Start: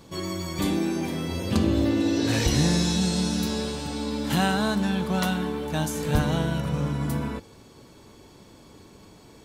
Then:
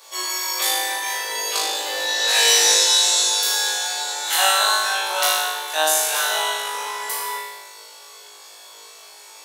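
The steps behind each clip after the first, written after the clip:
Bessel high-pass filter 810 Hz, order 8
high-shelf EQ 4,100 Hz +8 dB
on a send: flutter between parallel walls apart 3.3 metres, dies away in 1.1 s
on the sum: level +4 dB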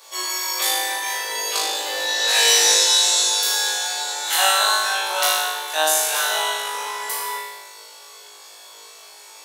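no processing that can be heard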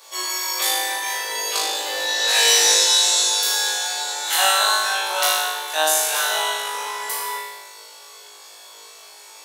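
gain into a clipping stage and back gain 6 dB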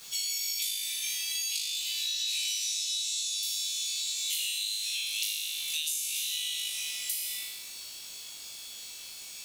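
Butterworth high-pass 2,300 Hz 72 dB per octave
bit reduction 8 bits
downward compressor 12 to 1, threshold −29 dBFS, peak gain reduction 17 dB

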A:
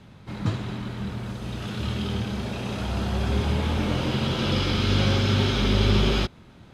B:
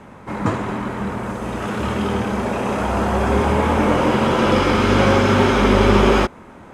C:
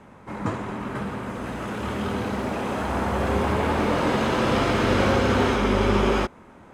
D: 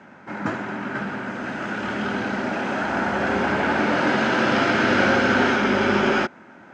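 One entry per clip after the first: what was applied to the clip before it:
graphic EQ with 10 bands 125 Hz −5 dB, 250 Hz +5 dB, 500 Hz +7 dB, 1,000 Hz +10 dB, 2,000 Hz +6 dB, 4,000 Hz −10 dB, 8,000 Hz +7 dB; level +4 dB
delay with pitch and tempo change per echo 588 ms, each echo +4 semitones, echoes 2, each echo −6 dB; level −7 dB
loudspeaker in its box 200–6,200 Hz, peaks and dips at 460 Hz −8 dB, 1,100 Hz −8 dB, 1,500 Hz +8 dB, 3,700 Hz −4 dB; level +4 dB

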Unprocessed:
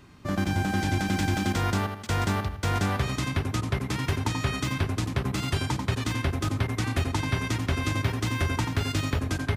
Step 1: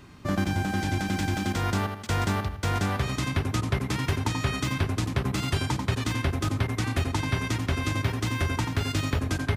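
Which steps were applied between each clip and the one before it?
speech leveller 0.5 s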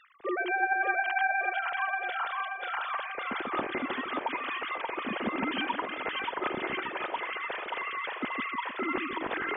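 three sine waves on the formant tracks
echo with a time of its own for lows and highs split 430 Hz, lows 154 ms, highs 581 ms, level −3 dB
level −7.5 dB

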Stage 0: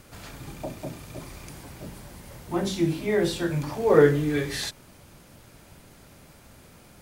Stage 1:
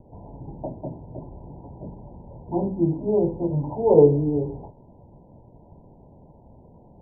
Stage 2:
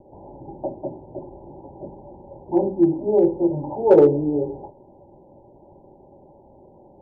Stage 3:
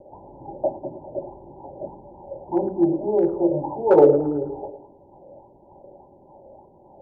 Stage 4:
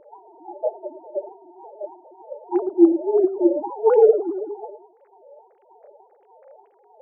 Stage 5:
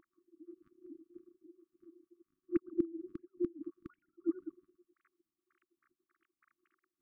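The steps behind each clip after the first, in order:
Chebyshev low-pass filter 990 Hz, order 10; level +3 dB
hollow resonant body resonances 370/560/790 Hz, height 16 dB, ringing for 35 ms; in parallel at −7 dB: hard clipping −1 dBFS, distortion −14 dB; on the sum: level −10.5 dB
on a send: tape delay 108 ms, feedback 57%, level −11 dB, low-pass 1,200 Hz; on the sum: auto-filter bell 1.7 Hz 540–1,600 Hz +12 dB; level −3.5 dB
three sine waves on the formant tracks; level +1 dB
gate with flip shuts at −11 dBFS, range −26 dB; linear-phase brick-wall band-stop 350–1,100 Hz; level −3 dB

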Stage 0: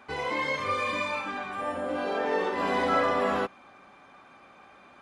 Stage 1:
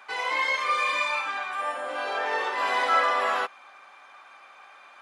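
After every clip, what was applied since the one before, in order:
high-pass filter 870 Hz 12 dB per octave
level +5.5 dB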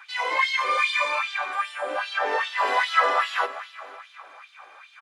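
repeating echo 254 ms, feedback 54%, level −14.5 dB
auto-filter high-pass sine 2.5 Hz 300–3,700 Hz

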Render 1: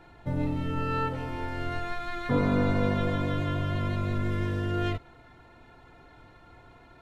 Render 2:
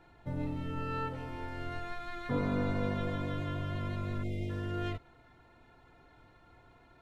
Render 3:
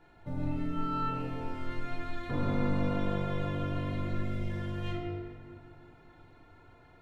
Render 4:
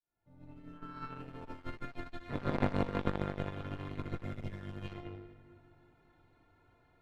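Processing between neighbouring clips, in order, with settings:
time-frequency box erased 0:04.23–0:04.50, 900–1,900 Hz; level −7 dB
convolution reverb RT60 2.1 s, pre-delay 7 ms, DRR −2 dB; level −2.5 dB
fade in at the beginning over 1.59 s; harmonic generator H 2 −9 dB, 3 −9 dB, 4 −35 dB, 5 −25 dB, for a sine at −17 dBFS; level +3.5 dB

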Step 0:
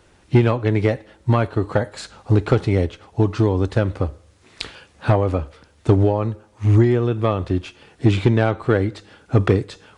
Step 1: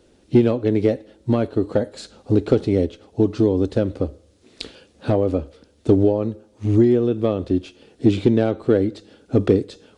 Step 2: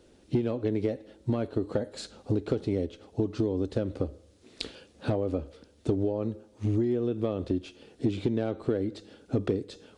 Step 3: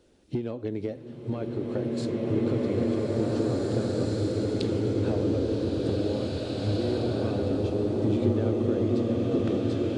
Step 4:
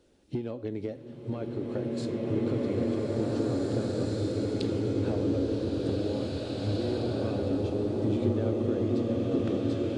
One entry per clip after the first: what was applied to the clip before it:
octave-band graphic EQ 125/250/500/1,000/2,000/4,000 Hz −4/+8/+6/−7/−5/+3 dB; level −4 dB
downward compressor 4 to 1, threshold −22 dBFS, peak gain reduction 11 dB; level −3 dB
slow-attack reverb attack 2,210 ms, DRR −7 dB; level −3.5 dB
tuned comb filter 280 Hz, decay 0.82 s; level +5 dB

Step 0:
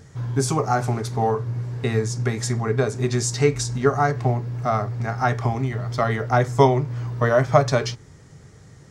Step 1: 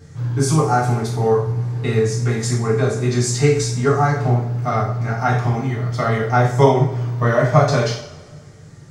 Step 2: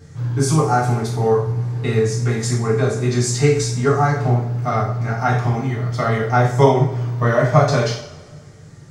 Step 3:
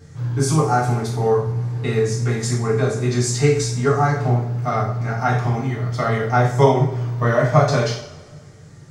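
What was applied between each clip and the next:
coupled-rooms reverb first 0.5 s, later 1.7 s, from −18 dB, DRR −5.5 dB; level −3.5 dB
no processing that can be heard
hum removal 55.41 Hz, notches 7; level −1 dB

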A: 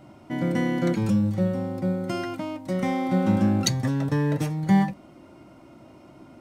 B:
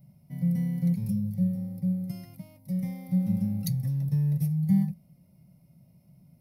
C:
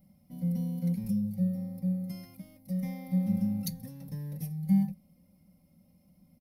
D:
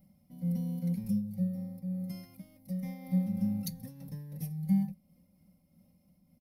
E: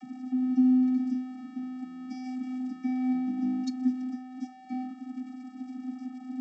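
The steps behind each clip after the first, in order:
drawn EQ curve 100 Hz 0 dB, 170 Hz +11 dB, 310 Hz −24 dB, 540 Hz −12 dB, 1,500 Hz −27 dB, 2,100 Hz −11 dB, 3,100 Hz −17 dB, 5,200 Hz −4 dB, 7,500 Hz −15 dB, 11,000 Hz +12 dB; level −7 dB
comb filter 3.8 ms, depth 94%; level −3.5 dB
amplitude modulation by smooth noise, depth 60%
converter with a step at zero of −46 dBFS; channel vocoder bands 32, square 255 Hz; level +5 dB

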